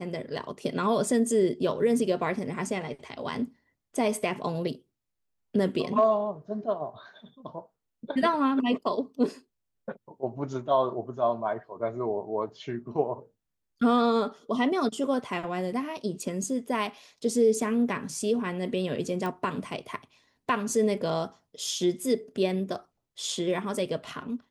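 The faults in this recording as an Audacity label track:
19.260000	19.260000	pop -20 dBFS

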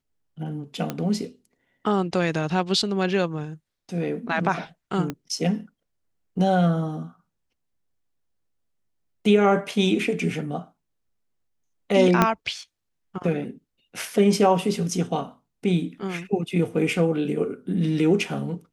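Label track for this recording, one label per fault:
0.900000	0.900000	pop -13 dBFS
5.100000	5.100000	pop -15 dBFS
12.220000	12.220000	pop -4 dBFS

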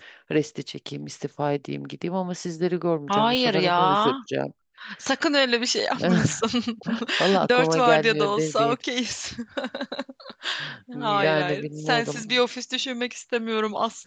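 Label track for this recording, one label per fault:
3.350000	3.350000	pop -12 dBFS
10.320000	10.330000	gap 6.3 ms

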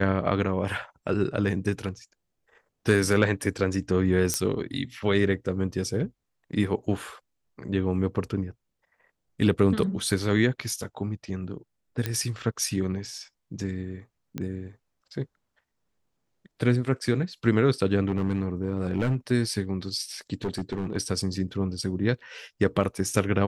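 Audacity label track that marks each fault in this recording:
4.340000	4.340000	pop -8 dBFS
12.060000	12.060000	pop -13 dBFS
14.380000	14.380000	pop -18 dBFS
18.080000	19.150000	clipped -19 dBFS
20.440000	20.970000	clipped -24 dBFS

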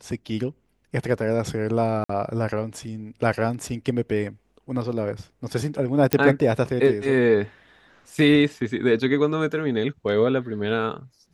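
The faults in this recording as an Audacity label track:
2.040000	2.090000	gap 54 ms
6.130000	6.130000	pop -5 dBFS

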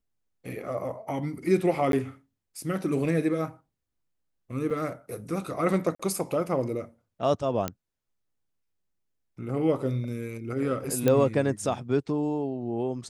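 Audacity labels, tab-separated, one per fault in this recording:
1.920000	1.930000	gap 12 ms
4.700000	4.710000	gap 5.3 ms
5.950000	6.000000	gap 45 ms
7.680000	7.680000	pop -13 dBFS
11.080000	11.080000	pop -10 dBFS

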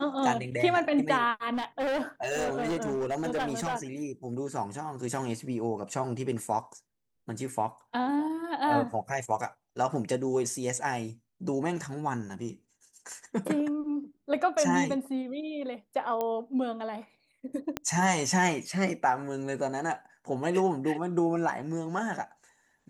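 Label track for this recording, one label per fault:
1.530000	3.760000	clipped -26.5 dBFS
16.210000	16.210000	pop -18 dBFS
17.770000	17.770000	pop -15 dBFS

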